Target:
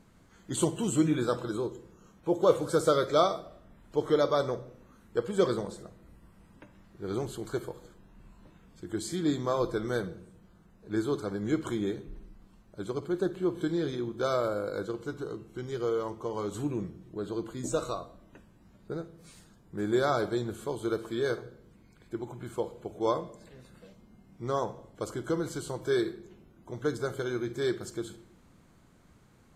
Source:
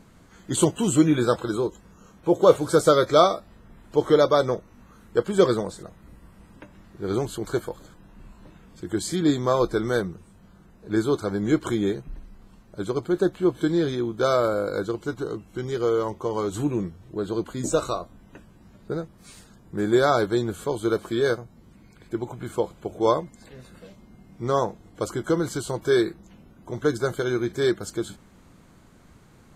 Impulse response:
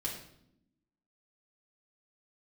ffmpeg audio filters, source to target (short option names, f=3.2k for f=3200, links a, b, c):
-filter_complex "[0:a]asplit=2[a][b];[1:a]atrim=start_sample=2205,adelay=48[c];[b][c]afir=irnorm=-1:irlink=0,volume=-15.5dB[d];[a][d]amix=inputs=2:normalize=0,volume=-7.5dB"